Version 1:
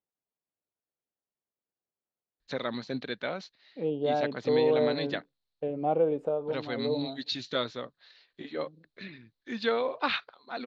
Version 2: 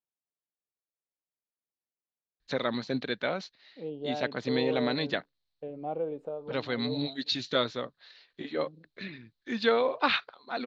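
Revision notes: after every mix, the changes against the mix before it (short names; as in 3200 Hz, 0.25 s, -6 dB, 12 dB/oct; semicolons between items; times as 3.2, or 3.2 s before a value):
first voice +3.0 dB; second voice -7.5 dB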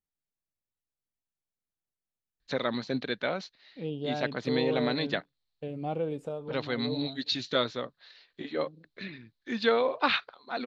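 second voice: remove band-pass 600 Hz, Q 0.79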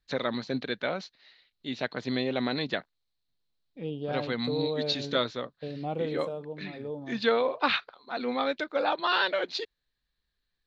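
first voice: entry -2.40 s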